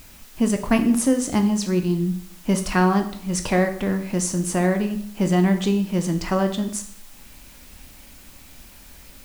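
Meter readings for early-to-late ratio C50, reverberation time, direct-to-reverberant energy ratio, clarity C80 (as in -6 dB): 10.5 dB, 0.60 s, 6.0 dB, 13.5 dB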